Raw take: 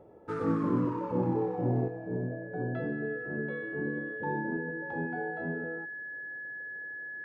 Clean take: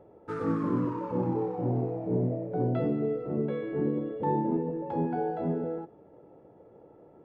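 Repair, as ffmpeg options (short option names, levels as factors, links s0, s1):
-af "bandreject=f=1700:w=30,asetnsamples=n=441:p=0,asendcmd='1.88 volume volume 6dB',volume=1"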